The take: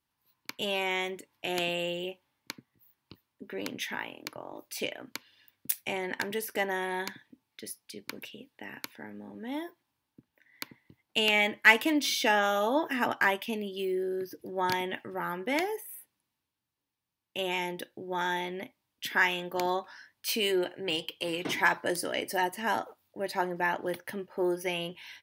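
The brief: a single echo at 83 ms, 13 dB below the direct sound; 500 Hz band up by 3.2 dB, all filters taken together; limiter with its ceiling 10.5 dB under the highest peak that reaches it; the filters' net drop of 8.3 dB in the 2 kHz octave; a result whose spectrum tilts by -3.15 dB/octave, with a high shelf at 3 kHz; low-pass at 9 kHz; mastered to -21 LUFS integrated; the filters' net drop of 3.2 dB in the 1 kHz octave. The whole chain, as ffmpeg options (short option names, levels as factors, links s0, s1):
-af "lowpass=9000,equalizer=f=500:t=o:g=6,equalizer=f=1000:t=o:g=-4.5,equalizer=f=2000:t=o:g=-8,highshelf=f=3000:g=-3.5,alimiter=limit=0.0794:level=0:latency=1,aecho=1:1:83:0.224,volume=4.22"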